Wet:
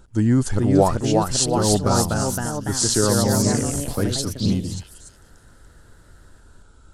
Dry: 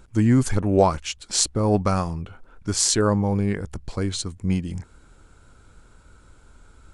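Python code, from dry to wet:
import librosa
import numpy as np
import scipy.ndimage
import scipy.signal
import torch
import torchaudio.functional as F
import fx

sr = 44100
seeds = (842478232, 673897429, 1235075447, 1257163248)

y = fx.echo_stepped(x, sr, ms=289, hz=3600.0, octaves=0.7, feedback_pct=70, wet_db=-5.0)
y = fx.echo_pitch(y, sr, ms=449, semitones=2, count=3, db_per_echo=-3.0)
y = fx.peak_eq(y, sr, hz=2300.0, db=-9.5, octaves=0.4)
y = fx.notch(y, sr, hz=1100.0, q=14.0)
y = fx.band_squash(y, sr, depth_pct=40, at=(2.81, 4.46))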